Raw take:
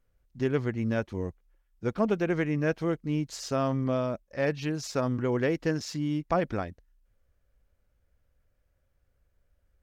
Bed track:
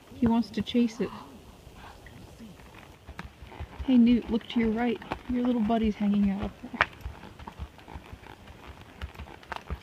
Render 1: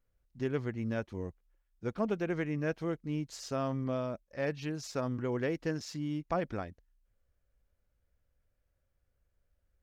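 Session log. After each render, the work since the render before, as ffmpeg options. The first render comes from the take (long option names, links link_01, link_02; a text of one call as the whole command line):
ffmpeg -i in.wav -af "volume=-6dB" out.wav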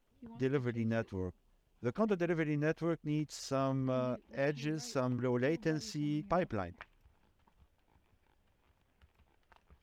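ffmpeg -i in.wav -i bed.wav -filter_complex "[1:a]volume=-27.5dB[link_01];[0:a][link_01]amix=inputs=2:normalize=0" out.wav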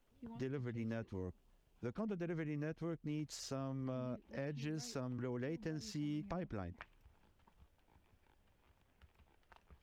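ffmpeg -i in.wav -filter_complex "[0:a]acrossover=split=310[link_01][link_02];[link_01]alimiter=level_in=14dB:limit=-24dB:level=0:latency=1,volume=-14dB[link_03];[link_02]acompressor=threshold=-45dB:ratio=6[link_04];[link_03][link_04]amix=inputs=2:normalize=0" out.wav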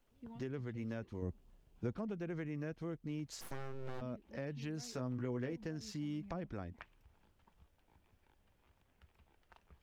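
ffmpeg -i in.wav -filter_complex "[0:a]asettb=1/sr,asplit=3[link_01][link_02][link_03];[link_01]atrim=end=1.224[link_04];[link_02]atrim=start=1.22:end=1.97,asetpts=PTS-STARTPTS,afade=type=in:duration=0.004:curve=qsin,afade=type=out:start_time=0.746:duration=0.004:curve=qsin,lowshelf=frequency=440:gain=7[link_05];[link_03]atrim=start=1.966[link_06];[link_04][link_05]acrossfade=duration=0.004:curve1=hsin:curve2=qsin[link_07];[link_07][link_06]acrossfade=duration=0.004:curve1=qsin:curve2=hsin,asplit=3[link_08][link_09][link_10];[link_08]afade=type=out:start_time=3.4:duration=0.02[link_11];[link_09]aeval=exprs='abs(val(0))':channel_layout=same,afade=type=in:start_time=3.4:duration=0.02,afade=type=out:start_time=4:duration=0.02[link_12];[link_10]afade=type=in:start_time=4:duration=0.02[link_13];[link_11][link_12][link_13]amix=inputs=3:normalize=0,asettb=1/sr,asplit=3[link_14][link_15][link_16];[link_14]atrim=end=4.924[link_17];[link_15]atrim=start=4.92:end=5.53,asetpts=PTS-STARTPTS,afade=type=in:duration=0.004:curve=qsin,afade=type=out:start_time=0.606:duration=0.004:curve=qsin,asplit=2[link_18][link_19];[link_19]adelay=16,volume=-6dB[link_20];[link_18][link_20]amix=inputs=2:normalize=0,atrim=end_sample=26901[link_21];[link_16]atrim=start=5.526[link_22];[link_17][link_21]acrossfade=duration=0.004:curve1=hsin:curve2=qsin[link_23];[link_23][link_22]acrossfade=duration=0.004:curve1=qsin:curve2=hsin" out.wav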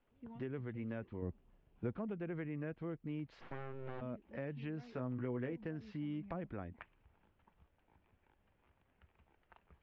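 ffmpeg -i in.wav -af "lowpass=frequency=2900:width=0.5412,lowpass=frequency=2900:width=1.3066,lowshelf=frequency=60:gain=-6" out.wav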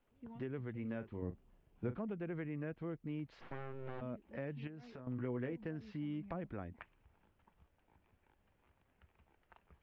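ffmpeg -i in.wav -filter_complex "[0:a]asettb=1/sr,asplit=3[link_01][link_02][link_03];[link_01]atrim=end=0.814[link_04];[link_02]atrim=start=0.81:end=1.96,asetpts=PTS-STARTPTS,afade=type=in:duration=0.004:curve=qsin,afade=type=out:start_time=1.146:duration=0.004:curve=qsin,asplit=2[link_05][link_06];[link_06]adelay=40,volume=-11.5dB[link_07];[link_05][link_07]amix=inputs=2:normalize=0,atrim=end_sample=50715[link_08];[link_03]atrim=start=1.956[link_09];[link_04][link_08]acrossfade=duration=0.004:curve1=hsin:curve2=qsin[link_10];[link_10][link_09]acrossfade=duration=0.004:curve1=qsin:curve2=hsin,asettb=1/sr,asplit=3[link_11][link_12][link_13];[link_11]atrim=end=4.674[link_14];[link_12]atrim=start=4.67:end=5.07,asetpts=PTS-STARTPTS,afade=type=in:duration=0.004:curve=qsin,afade=type=out:start_time=0.396:duration=0.004:curve=qsin,acompressor=threshold=-47dB:ratio=6:attack=3.2:release=140:knee=1:detection=peak[link_15];[link_13]atrim=start=5.066[link_16];[link_14][link_15]acrossfade=duration=0.004:curve1=hsin:curve2=qsin[link_17];[link_17][link_16]acrossfade=duration=0.004:curve1=qsin:curve2=hsin" out.wav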